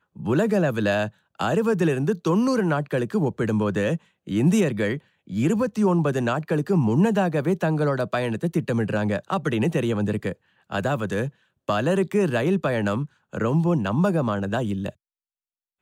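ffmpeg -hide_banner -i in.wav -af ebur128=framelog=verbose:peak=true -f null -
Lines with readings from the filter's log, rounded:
Integrated loudness:
  I:         -23.6 LUFS
  Threshold: -33.7 LUFS
Loudness range:
  LRA:         2.9 LU
  Threshold: -43.7 LUFS
  LRA low:   -25.4 LUFS
  LRA high:  -22.5 LUFS
True peak:
  Peak:       -9.5 dBFS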